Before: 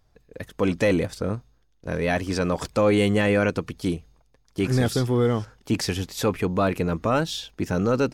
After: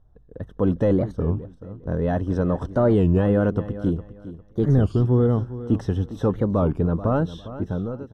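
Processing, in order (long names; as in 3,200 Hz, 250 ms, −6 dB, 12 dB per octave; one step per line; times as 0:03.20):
fade-out on the ending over 0.70 s
moving average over 19 samples
low-shelf EQ 160 Hz +8.5 dB
repeating echo 405 ms, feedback 24%, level −14.5 dB
wow of a warped record 33 1/3 rpm, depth 250 cents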